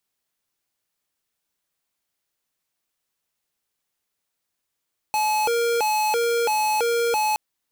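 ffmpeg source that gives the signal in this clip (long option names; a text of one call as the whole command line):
ffmpeg -f lavfi -i "aevalsrc='0.0841*(2*lt(mod((662*t+193/1.5*(0.5-abs(mod(1.5*t,1)-0.5))),1),0.5)-1)':duration=2.22:sample_rate=44100" out.wav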